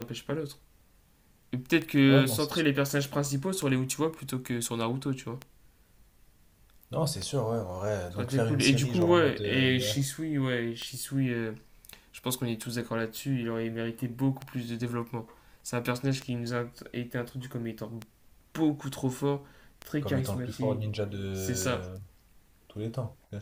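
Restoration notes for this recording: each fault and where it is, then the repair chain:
tick 33 1/3 rpm -20 dBFS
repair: de-click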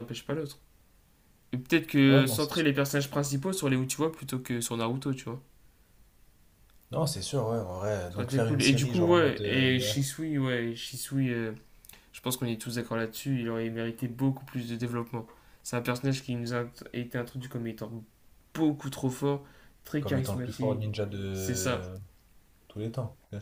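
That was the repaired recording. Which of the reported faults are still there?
none

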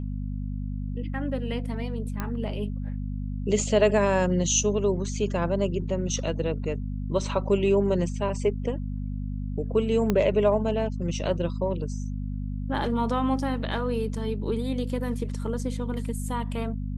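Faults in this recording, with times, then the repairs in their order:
hum 50 Hz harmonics 5 -31 dBFS
2.2 pop -16 dBFS
10.1 pop -11 dBFS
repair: de-click; de-hum 50 Hz, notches 5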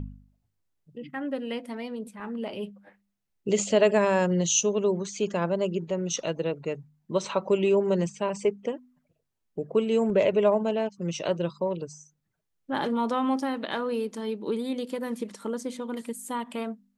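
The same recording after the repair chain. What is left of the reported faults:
10.1 pop

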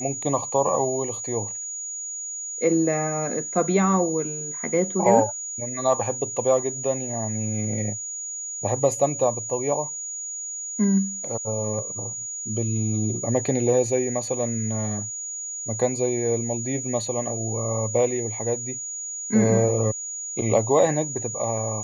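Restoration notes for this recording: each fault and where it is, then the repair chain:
tone 6800 Hz -30 dBFS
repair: notch 6800 Hz, Q 30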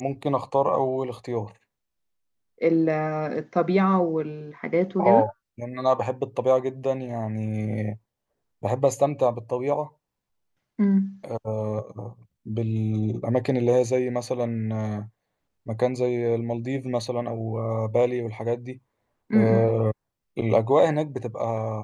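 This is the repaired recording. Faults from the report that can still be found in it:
none

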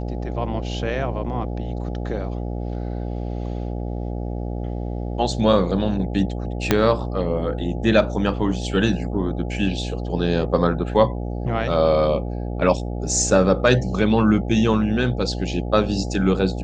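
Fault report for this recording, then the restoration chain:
buzz 60 Hz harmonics 14 -27 dBFS
6.71 pop -1 dBFS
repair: de-click; de-hum 60 Hz, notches 14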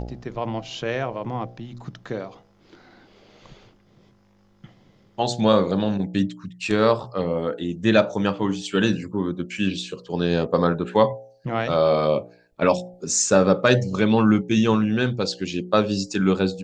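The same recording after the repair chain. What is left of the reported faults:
6.71 pop

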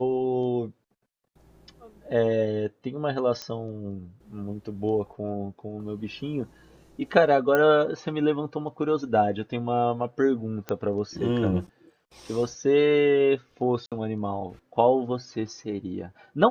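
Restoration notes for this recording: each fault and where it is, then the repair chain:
3.42 pop -18 dBFS
7.55 pop -11 dBFS
10.69 pop -16 dBFS
13.86–13.92 gap 57 ms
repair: de-click; interpolate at 13.86, 57 ms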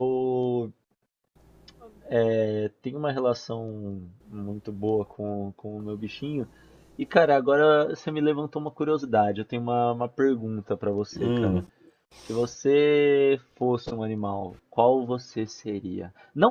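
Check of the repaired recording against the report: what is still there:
none

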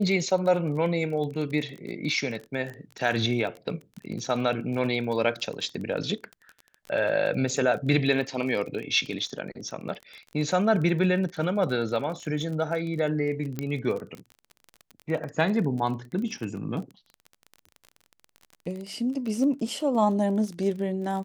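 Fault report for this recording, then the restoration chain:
crackle 26/s -33 dBFS
13.59 pop -16 dBFS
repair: de-click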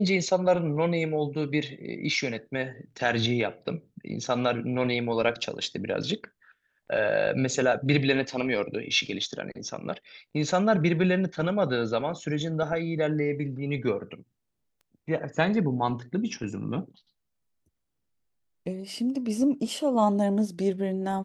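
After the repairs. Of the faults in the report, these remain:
none

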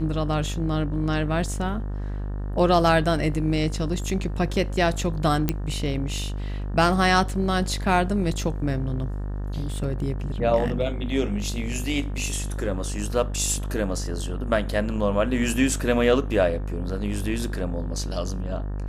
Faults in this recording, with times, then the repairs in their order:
buzz 50 Hz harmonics 37 -29 dBFS
5.49 pop -8 dBFS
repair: de-click; de-hum 50 Hz, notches 37

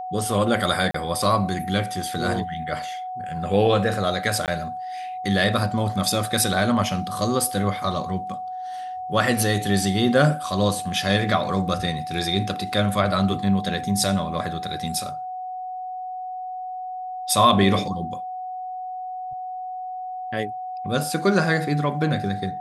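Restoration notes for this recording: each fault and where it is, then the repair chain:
tone 740 Hz -29 dBFS
0.91–0.94 gap 34 ms
4.46–4.48 gap 18 ms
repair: notch 740 Hz, Q 30; interpolate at 0.91, 34 ms; interpolate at 4.46, 18 ms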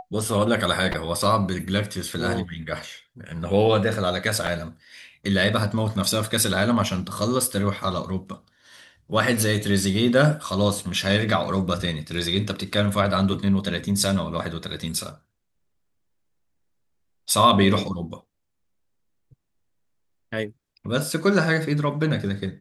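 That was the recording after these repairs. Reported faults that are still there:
none

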